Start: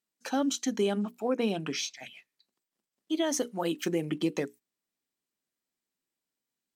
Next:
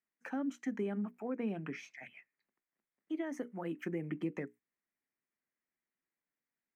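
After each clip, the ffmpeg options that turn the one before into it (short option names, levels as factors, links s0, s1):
-filter_complex "[0:a]highshelf=f=2800:t=q:w=3:g=-11.5,acrossover=split=310[s0][s1];[s1]acompressor=threshold=0.00708:ratio=2[s2];[s0][s2]amix=inputs=2:normalize=0,volume=0.562"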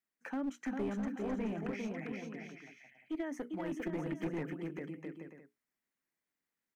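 -filter_complex "[0:a]asplit=2[s0][s1];[s1]aecho=0:1:400|660|829|938.8|1010:0.631|0.398|0.251|0.158|0.1[s2];[s0][s2]amix=inputs=2:normalize=0,aeval=exprs='clip(val(0),-1,0.02)':c=same"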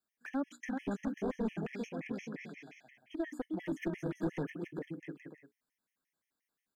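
-af "afftfilt=real='re*gt(sin(2*PI*5.7*pts/sr)*(1-2*mod(floor(b*sr/1024/1700),2)),0)':imag='im*gt(sin(2*PI*5.7*pts/sr)*(1-2*mod(floor(b*sr/1024/1700),2)),0)':win_size=1024:overlap=0.75,volume=1.5"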